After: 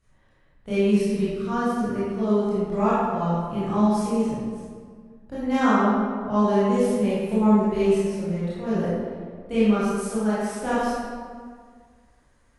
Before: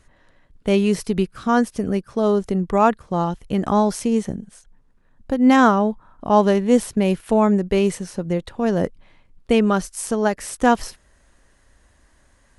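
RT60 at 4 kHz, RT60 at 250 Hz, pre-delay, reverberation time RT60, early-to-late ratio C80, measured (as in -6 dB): 1.1 s, 2.0 s, 20 ms, 1.8 s, -1.5 dB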